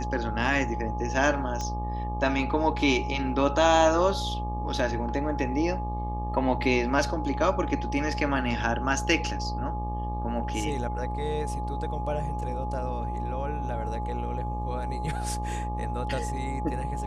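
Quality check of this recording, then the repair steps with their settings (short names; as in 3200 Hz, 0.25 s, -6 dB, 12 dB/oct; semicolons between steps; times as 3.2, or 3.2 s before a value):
buzz 60 Hz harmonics 20 -32 dBFS
tone 840 Hz -34 dBFS
1.61 pop -20 dBFS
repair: de-click; notch 840 Hz, Q 30; de-hum 60 Hz, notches 20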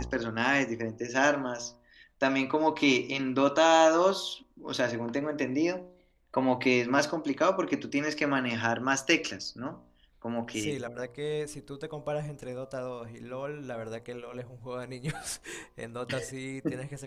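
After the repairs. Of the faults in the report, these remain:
1.61 pop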